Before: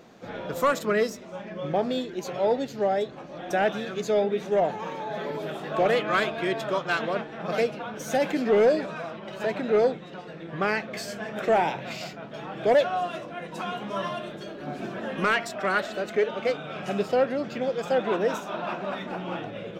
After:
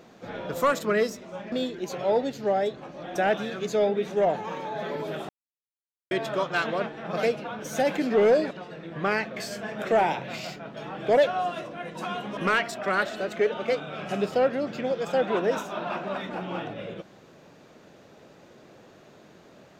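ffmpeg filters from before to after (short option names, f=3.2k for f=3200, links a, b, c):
-filter_complex "[0:a]asplit=6[a][b][c][d][e][f];[a]atrim=end=1.522[g];[b]atrim=start=1.868:end=5.64,asetpts=PTS-STARTPTS,afade=t=out:st=3.768:d=0.004:c=hsin[h];[c]atrim=start=5.64:end=6.46,asetpts=PTS-STARTPTS,volume=0[i];[d]atrim=start=6.46:end=8.862,asetpts=PTS-STARTPTS,afade=t=in:d=0.004:c=hsin[j];[e]atrim=start=10.078:end=13.942[k];[f]atrim=start=15.138[l];[h][i][j]concat=n=3:v=0:a=1[m];[g][m]acrossfade=d=0.004:c1=hsin:c2=hsin[n];[n][k]acrossfade=d=0.004:c1=hsin:c2=hsin[o];[o][l]acrossfade=d=0.004:c1=hsin:c2=hsin"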